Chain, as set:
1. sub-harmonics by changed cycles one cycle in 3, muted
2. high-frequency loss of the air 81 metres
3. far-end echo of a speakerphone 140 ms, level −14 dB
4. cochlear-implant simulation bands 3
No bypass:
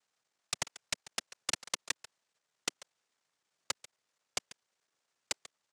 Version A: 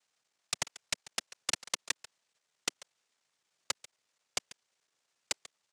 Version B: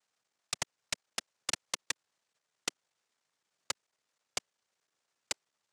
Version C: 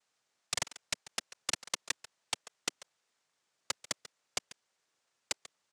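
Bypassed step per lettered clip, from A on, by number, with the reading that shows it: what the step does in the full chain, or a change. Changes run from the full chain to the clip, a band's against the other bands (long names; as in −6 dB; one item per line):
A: 2, change in integrated loudness +1.5 LU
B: 3, change in momentary loudness spread −17 LU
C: 1, change in momentary loudness spread −16 LU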